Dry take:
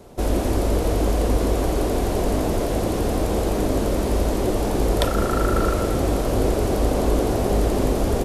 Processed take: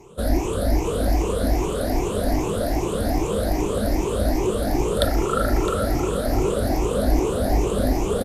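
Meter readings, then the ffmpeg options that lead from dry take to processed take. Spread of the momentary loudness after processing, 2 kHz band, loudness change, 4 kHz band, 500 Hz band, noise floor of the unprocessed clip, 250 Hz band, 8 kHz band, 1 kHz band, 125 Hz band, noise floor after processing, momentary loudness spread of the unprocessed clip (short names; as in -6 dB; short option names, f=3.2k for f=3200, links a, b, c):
2 LU, -0.5 dB, -1.0 dB, 0.0 dB, -0.5 dB, -23 dBFS, -1.0 dB, -0.5 dB, -0.5 dB, -1.5 dB, -26 dBFS, 2 LU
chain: -filter_complex "[0:a]afftfilt=real='re*pow(10,18/40*sin(2*PI*(0.72*log(max(b,1)*sr/1024/100)/log(2)-(2.5)*(pts-256)/sr)))':imag='im*pow(10,18/40*sin(2*PI*(0.72*log(max(b,1)*sr/1024/100)/log(2)-(2.5)*(pts-256)/sr)))':win_size=1024:overlap=0.75,asplit=2[a][b];[b]aecho=0:1:661:0.2[c];[a][c]amix=inputs=2:normalize=0,volume=-4.5dB"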